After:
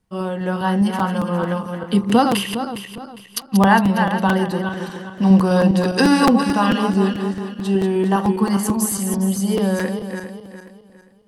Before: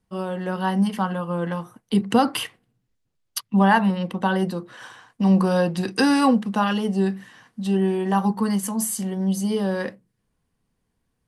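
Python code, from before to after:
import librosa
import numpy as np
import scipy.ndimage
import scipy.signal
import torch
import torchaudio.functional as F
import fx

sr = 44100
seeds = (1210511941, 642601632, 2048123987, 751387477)

y = fx.reverse_delay_fb(x, sr, ms=204, feedback_pct=57, wet_db=-6.0)
y = fx.buffer_crackle(y, sr, first_s=0.99, period_s=0.22, block=256, kind='repeat')
y = y * 10.0 ** (3.0 / 20.0)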